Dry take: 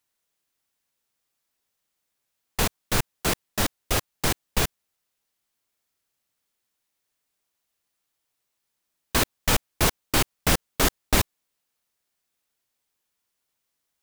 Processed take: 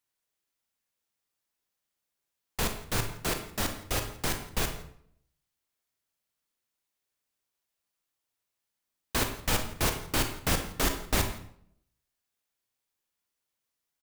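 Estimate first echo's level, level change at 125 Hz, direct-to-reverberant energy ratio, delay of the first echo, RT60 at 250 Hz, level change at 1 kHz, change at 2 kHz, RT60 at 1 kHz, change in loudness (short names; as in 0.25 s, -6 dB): -21.0 dB, -4.5 dB, 5.5 dB, 0.168 s, 0.80 s, -5.5 dB, -5.5 dB, 0.60 s, -5.5 dB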